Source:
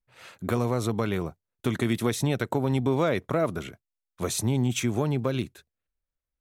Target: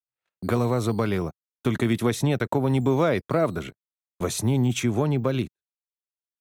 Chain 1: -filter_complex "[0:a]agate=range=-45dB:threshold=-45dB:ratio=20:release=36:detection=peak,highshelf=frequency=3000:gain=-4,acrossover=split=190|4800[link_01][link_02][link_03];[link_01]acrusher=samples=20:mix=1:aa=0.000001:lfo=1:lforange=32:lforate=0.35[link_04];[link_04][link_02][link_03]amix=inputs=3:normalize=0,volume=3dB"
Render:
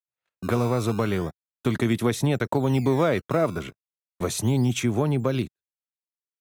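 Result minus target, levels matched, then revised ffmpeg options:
sample-and-hold swept by an LFO: distortion +11 dB
-filter_complex "[0:a]agate=range=-45dB:threshold=-45dB:ratio=20:release=36:detection=peak,highshelf=frequency=3000:gain=-4,acrossover=split=190|4800[link_01][link_02][link_03];[link_01]acrusher=samples=6:mix=1:aa=0.000001:lfo=1:lforange=9.6:lforate=0.35[link_04];[link_04][link_02][link_03]amix=inputs=3:normalize=0,volume=3dB"

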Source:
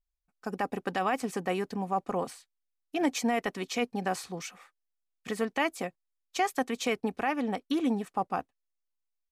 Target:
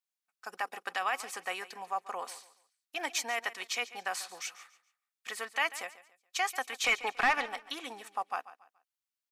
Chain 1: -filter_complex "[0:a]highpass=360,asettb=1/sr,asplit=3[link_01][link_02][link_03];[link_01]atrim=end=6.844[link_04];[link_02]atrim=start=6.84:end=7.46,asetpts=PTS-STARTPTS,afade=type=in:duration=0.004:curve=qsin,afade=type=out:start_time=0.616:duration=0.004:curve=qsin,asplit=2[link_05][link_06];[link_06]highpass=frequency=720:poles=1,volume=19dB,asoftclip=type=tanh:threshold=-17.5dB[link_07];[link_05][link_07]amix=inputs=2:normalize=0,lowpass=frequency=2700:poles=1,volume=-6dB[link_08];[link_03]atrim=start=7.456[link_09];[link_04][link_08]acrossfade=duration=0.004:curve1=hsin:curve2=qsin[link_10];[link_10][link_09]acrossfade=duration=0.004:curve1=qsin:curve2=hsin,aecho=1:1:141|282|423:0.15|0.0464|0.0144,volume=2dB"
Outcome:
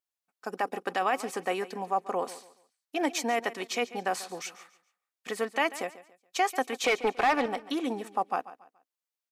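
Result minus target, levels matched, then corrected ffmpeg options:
500 Hz band +8.0 dB
-filter_complex "[0:a]highpass=1100,asettb=1/sr,asplit=3[link_01][link_02][link_03];[link_01]atrim=end=6.844[link_04];[link_02]atrim=start=6.84:end=7.46,asetpts=PTS-STARTPTS,afade=type=in:duration=0.004:curve=qsin,afade=type=out:start_time=0.616:duration=0.004:curve=qsin,asplit=2[link_05][link_06];[link_06]highpass=frequency=720:poles=1,volume=19dB,asoftclip=type=tanh:threshold=-17.5dB[link_07];[link_05][link_07]amix=inputs=2:normalize=0,lowpass=frequency=2700:poles=1,volume=-6dB[link_08];[link_03]atrim=start=7.456[link_09];[link_04][link_08]acrossfade=duration=0.004:curve1=hsin:curve2=qsin[link_10];[link_10][link_09]acrossfade=duration=0.004:curve1=qsin:curve2=hsin,aecho=1:1:141|282|423:0.15|0.0464|0.0144,volume=2dB"

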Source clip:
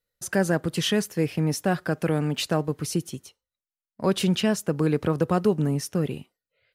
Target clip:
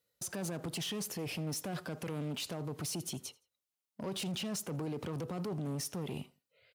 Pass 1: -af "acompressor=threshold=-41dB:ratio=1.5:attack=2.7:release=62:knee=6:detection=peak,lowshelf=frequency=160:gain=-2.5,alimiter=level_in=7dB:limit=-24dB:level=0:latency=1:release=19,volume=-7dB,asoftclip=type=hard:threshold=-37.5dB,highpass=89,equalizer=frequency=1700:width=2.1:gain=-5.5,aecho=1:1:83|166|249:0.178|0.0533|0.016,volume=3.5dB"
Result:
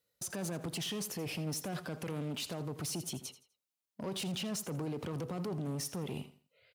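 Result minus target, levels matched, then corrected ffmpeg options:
echo-to-direct +9 dB
-af "acompressor=threshold=-41dB:ratio=1.5:attack=2.7:release=62:knee=6:detection=peak,lowshelf=frequency=160:gain=-2.5,alimiter=level_in=7dB:limit=-24dB:level=0:latency=1:release=19,volume=-7dB,asoftclip=type=hard:threshold=-37.5dB,highpass=89,equalizer=frequency=1700:width=2.1:gain=-5.5,aecho=1:1:83|166:0.0631|0.0189,volume=3.5dB"

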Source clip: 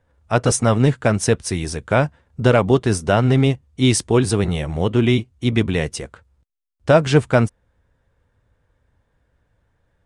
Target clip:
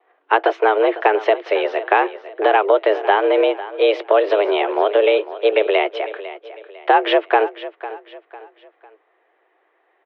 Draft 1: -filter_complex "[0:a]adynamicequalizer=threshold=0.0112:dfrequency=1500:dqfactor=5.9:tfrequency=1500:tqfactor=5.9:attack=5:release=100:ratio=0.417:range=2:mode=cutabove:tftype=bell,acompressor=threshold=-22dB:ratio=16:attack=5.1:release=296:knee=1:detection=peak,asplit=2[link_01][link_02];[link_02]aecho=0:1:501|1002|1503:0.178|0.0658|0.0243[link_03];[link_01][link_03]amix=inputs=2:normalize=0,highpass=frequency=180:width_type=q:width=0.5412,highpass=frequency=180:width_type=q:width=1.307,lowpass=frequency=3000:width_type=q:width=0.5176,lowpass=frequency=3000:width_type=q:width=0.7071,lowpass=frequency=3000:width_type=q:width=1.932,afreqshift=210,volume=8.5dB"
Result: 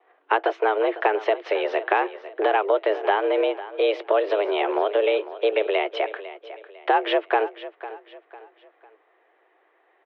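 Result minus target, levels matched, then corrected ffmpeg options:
downward compressor: peak gain reduction +6 dB
-filter_complex "[0:a]adynamicequalizer=threshold=0.0112:dfrequency=1500:dqfactor=5.9:tfrequency=1500:tqfactor=5.9:attack=5:release=100:ratio=0.417:range=2:mode=cutabove:tftype=bell,acompressor=threshold=-15.5dB:ratio=16:attack=5.1:release=296:knee=1:detection=peak,asplit=2[link_01][link_02];[link_02]aecho=0:1:501|1002|1503:0.178|0.0658|0.0243[link_03];[link_01][link_03]amix=inputs=2:normalize=0,highpass=frequency=180:width_type=q:width=0.5412,highpass=frequency=180:width_type=q:width=1.307,lowpass=frequency=3000:width_type=q:width=0.5176,lowpass=frequency=3000:width_type=q:width=0.7071,lowpass=frequency=3000:width_type=q:width=1.932,afreqshift=210,volume=8.5dB"

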